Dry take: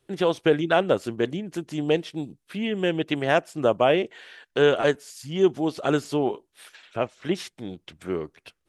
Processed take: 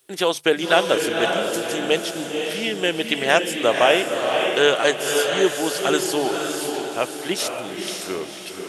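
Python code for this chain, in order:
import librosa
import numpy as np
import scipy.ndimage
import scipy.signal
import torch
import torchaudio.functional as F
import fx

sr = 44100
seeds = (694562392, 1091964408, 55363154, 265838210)

y = fx.riaa(x, sr, side='recording')
y = fx.hum_notches(y, sr, base_hz=50, count=3)
y = fx.echo_diffused(y, sr, ms=530, feedback_pct=43, wet_db=-3.5)
y = y * 10.0 ** (4.0 / 20.0)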